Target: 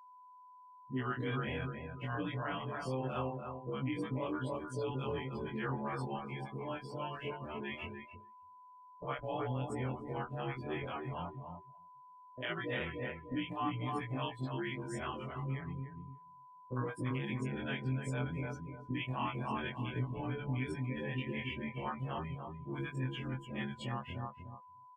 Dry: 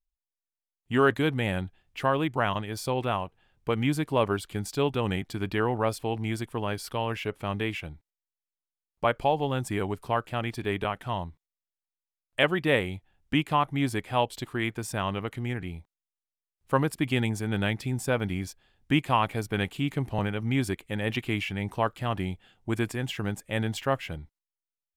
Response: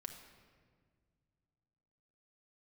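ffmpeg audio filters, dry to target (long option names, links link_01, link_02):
-filter_complex "[0:a]afftfilt=real='re':imag='-im':win_size=2048:overlap=0.75,flanger=delay=6.8:depth=1.4:regen=5:speed=0.44:shape=sinusoidal,asplit=2[link_01][link_02];[link_02]adelay=294,lowpass=frequency=2500:poles=1,volume=-5dB,asplit=2[link_03][link_04];[link_04]adelay=294,lowpass=frequency=2500:poles=1,volume=0.38,asplit=2[link_05][link_06];[link_06]adelay=294,lowpass=frequency=2500:poles=1,volume=0.38,asplit=2[link_07][link_08];[link_08]adelay=294,lowpass=frequency=2500:poles=1,volume=0.38,asplit=2[link_09][link_10];[link_10]adelay=294,lowpass=frequency=2500:poles=1,volume=0.38[link_11];[link_03][link_05][link_07][link_09][link_11]amix=inputs=5:normalize=0[link_12];[link_01][link_12]amix=inputs=2:normalize=0,afftdn=noise_reduction=24:noise_floor=-44,alimiter=level_in=1.5dB:limit=-24dB:level=0:latency=1:release=35,volume=-1.5dB,agate=range=-13dB:threshold=-51dB:ratio=16:detection=peak,acrossover=split=580[link_13][link_14];[link_14]adelay=50[link_15];[link_13][link_15]amix=inputs=2:normalize=0,aeval=exprs='val(0)+0.00224*sin(2*PI*1000*n/s)':channel_layout=same,volume=-1.5dB"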